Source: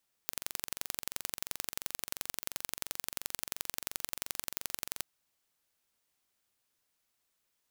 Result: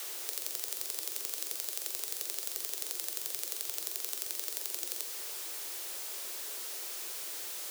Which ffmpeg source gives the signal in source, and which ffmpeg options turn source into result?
-f lavfi -i "aevalsrc='0.501*eq(mod(n,1926),0)*(0.5+0.5*eq(mod(n,3852),0))':duration=4.73:sample_rate=44100"
-filter_complex "[0:a]aeval=exprs='val(0)+0.5*0.0211*sgn(val(0))':channel_layout=same,acrossover=split=260|3000[link_01][link_02][link_03];[link_02]acompressor=threshold=-51dB:ratio=6[link_04];[link_01][link_04][link_03]amix=inputs=3:normalize=0,afreqshift=320"

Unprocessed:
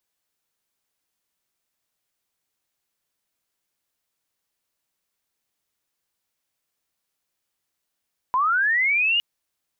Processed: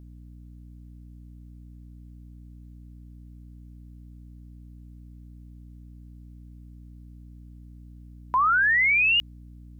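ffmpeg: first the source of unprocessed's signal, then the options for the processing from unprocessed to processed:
-f lavfi -i "aevalsrc='0.133*sin(2*PI*(980*t+1920*t*t/(2*0.86)))':duration=0.86:sample_rate=44100"
-af "aeval=exprs='val(0)+0.00631*(sin(2*PI*60*n/s)+sin(2*PI*2*60*n/s)/2+sin(2*PI*3*60*n/s)/3+sin(2*PI*4*60*n/s)/4+sin(2*PI*5*60*n/s)/5)':channel_layout=same"

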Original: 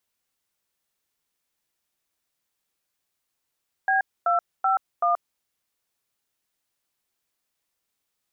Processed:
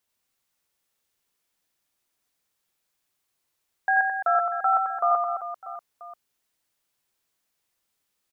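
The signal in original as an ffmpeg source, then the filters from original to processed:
-f lavfi -i "aevalsrc='0.0891*clip(min(mod(t,0.381),0.129-mod(t,0.381))/0.002,0,1)*(eq(floor(t/0.381),0)*(sin(2*PI*770*mod(t,0.381))+sin(2*PI*1633*mod(t,0.381)))+eq(floor(t/0.381),1)*(sin(2*PI*697*mod(t,0.381))+sin(2*PI*1336*mod(t,0.381)))+eq(floor(t/0.381),2)*(sin(2*PI*770*mod(t,0.381))+sin(2*PI*1336*mod(t,0.381)))+eq(floor(t/0.381),3)*(sin(2*PI*697*mod(t,0.381))+sin(2*PI*1209*mod(t,0.381))))':duration=1.524:sample_rate=44100"
-af "aecho=1:1:90|216|392.4|639.4|985.1:0.631|0.398|0.251|0.158|0.1"

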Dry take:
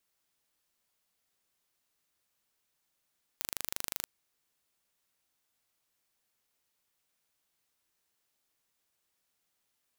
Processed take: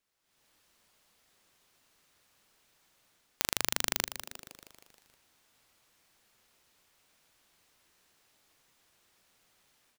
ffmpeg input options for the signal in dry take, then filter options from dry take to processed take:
-f lavfi -i "aevalsrc='0.447*eq(mod(n,1736),0)':duration=0.63:sample_rate=44100"
-filter_complex "[0:a]highshelf=frequency=7900:gain=-9,dynaudnorm=framelen=220:gausssize=3:maxgain=14dB,asplit=2[link_01][link_02];[link_02]asplit=7[link_03][link_04][link_05][link_06][link_07][link_08][link_09];[link_03]adelay=157,afreqshift=-140,volume=-11.5dB[link_10];[link_04]adelay=314,afreqshift=-280,volume=-15.9dB[link_11];[link_05]adelay=471,afreqshift=-420,volume=-20.4dB[link_12];[link_06]adelay=628,afreqshift=-560,volume=-24.8dB[link_13];[link_07]adelay=785,afreqshift=-700,volume=-29.2dB[link_14];[link_08]adelay=942,afreqshift=-840,volume=-33.7dB[link_15];[link_09]adelay=1099,afreqshift=-980,volume=-38.1dB[link_16];[link_10][link_11][link_12][link_13][link_14][link_15][link_16]amix=inputs=7:normalize=0[link_17];[link_01][link_17]amix=inputs=2:normalize=0"

